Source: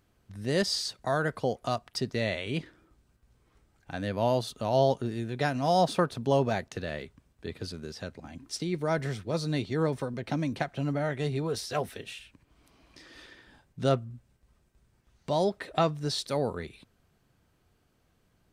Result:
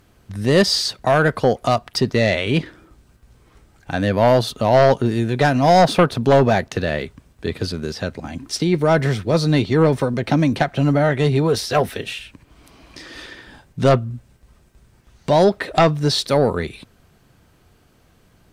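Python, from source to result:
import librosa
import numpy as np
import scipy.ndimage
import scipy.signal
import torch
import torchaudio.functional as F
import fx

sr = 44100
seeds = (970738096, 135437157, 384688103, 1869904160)

y = fx.dynamic_eq(x, sr, hz=8100.0, q=0.88, threshold_db=-53.0, ratio=4.0, max_db=-5)
y = fx.fold_sine(y, sr, drive_db=6, ceiling_db=-10.5)
y = y * librosa.db_to_amplitude(4.0)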